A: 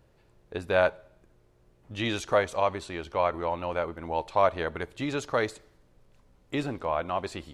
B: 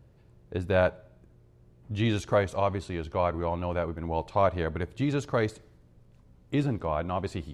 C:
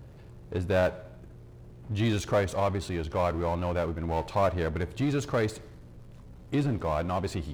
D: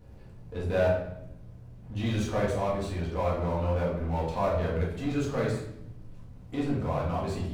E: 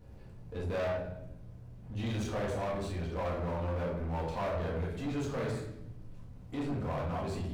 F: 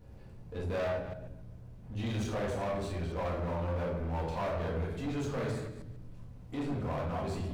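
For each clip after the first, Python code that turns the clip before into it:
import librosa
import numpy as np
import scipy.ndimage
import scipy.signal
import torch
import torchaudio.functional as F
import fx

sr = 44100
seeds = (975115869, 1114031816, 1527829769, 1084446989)

y1 = fx.peak_eq(x, sr, hz=110.0, db=12.5, octaves=3.0)
y1 = F.gain(torch.from_numpy(y1), -3.5).numpy()
y2 = fx.power_curve(y1, sr, exponent=0.7)
y2 = F.gain(torch.from_numpy(y2), -3.5).numpy()
y3 = fx.room_shoebox(y2, sr, seeds[0], volume_m3=170.0, walls='mixed', distance_m=1.9)
y3 = F.gain(torch.from_numpy(y3), -9.0).numpy()
y4 = 10.0 ** (-27.5 / 20.0) * np.tanh(y3 / 10.0 ** (-27.5 / 20.0))
y4 = F.gain(torch.from_numpy(y4), -2.0).numpy()
y5 = fx.reverse_delay(y4, sr, ms=142, wet_db=-12.0)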